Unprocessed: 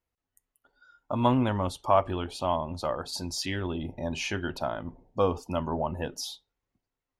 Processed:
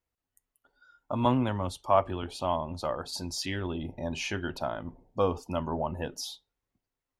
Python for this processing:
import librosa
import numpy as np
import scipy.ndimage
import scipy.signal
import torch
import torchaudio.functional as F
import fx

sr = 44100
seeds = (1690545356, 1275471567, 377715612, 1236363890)

y = fx.band_widen(x, sr, depth_pct=40, at=(1.25, 2.23))
y = F.gain(torch.from_numpy(y), -1.5).numpy()